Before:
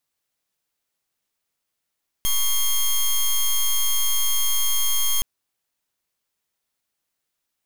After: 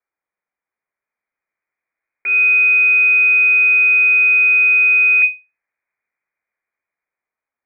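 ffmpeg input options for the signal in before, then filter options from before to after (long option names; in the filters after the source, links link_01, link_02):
-f lavfi -i "aevalsrc='0.106*(2*lt(mod(3230*t,1),0.1)-1)':duration=2.97:sample_rate=44100"
-filter_complex "[0:a]acrossover=split=900[link_01][link_02];[link_01]dynaudnorm=framelen=600:gausssize=5:maxgain=9.5dB[link_03];[link_03][link_02]amix=inputs=2:normalize=0,lowpass=frequency=2100:width_type=q:width=0.5098,lowpass=frequency=2100:width_type=q:width=0.6013,lowpass=frequency=2100:width_type=q:width=0.9,lowpass=frequency=2100:width_type=q:width=2.563,afreqshift=-2500"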